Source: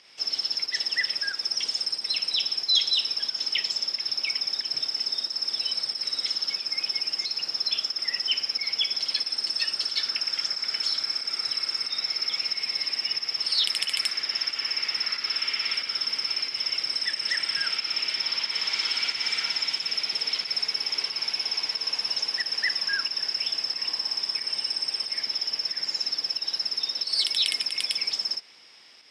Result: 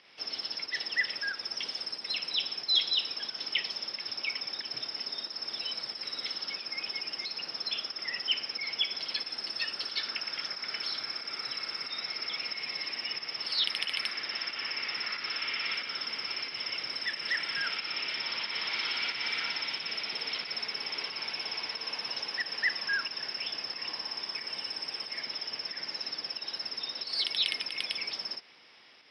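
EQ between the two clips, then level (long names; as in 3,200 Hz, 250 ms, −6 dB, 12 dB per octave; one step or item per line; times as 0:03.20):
moving average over 6 samples
0.0 dB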